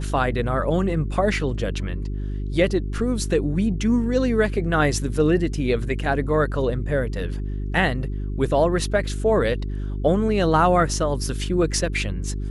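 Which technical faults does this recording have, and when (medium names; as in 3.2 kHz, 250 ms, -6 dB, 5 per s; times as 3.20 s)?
hum 50 Hz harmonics 8 -27 dBFS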